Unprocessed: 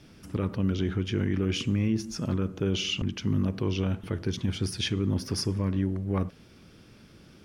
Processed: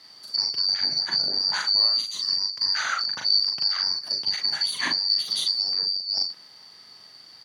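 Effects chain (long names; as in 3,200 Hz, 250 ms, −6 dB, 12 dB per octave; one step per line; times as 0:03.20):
band-splitting scrambler in four parts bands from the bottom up 2341
high-pass filter 120 Hz 24 dB per octave
double-tracking delay 40 ms −3 dB
level +2.5 dB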